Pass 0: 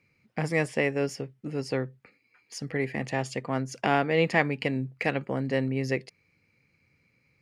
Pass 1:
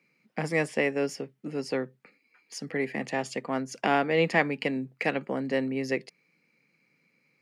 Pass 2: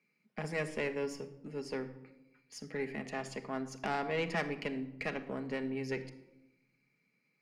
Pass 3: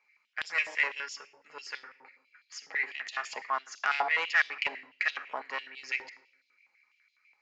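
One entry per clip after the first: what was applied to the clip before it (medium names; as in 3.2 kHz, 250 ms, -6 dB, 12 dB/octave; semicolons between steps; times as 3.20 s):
steep high-pass 160 Hz 36 dB/octave
valve stage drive 18 dB, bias 0.45; simulated room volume 3400 m³, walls furnished, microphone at 1.4 m; trim -7.5 dB
resampled via 16 kHz; step-sequenced high-pass 12 Hz 870–3600 Hz; trim +4.5 dB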